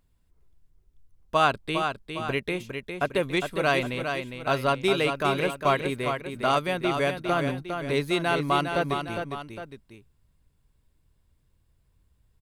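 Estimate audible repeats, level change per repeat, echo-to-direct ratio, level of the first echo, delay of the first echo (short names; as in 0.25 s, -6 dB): 2, -6.0 dB, -5.5 dB, -6.5 dB, 0.407 s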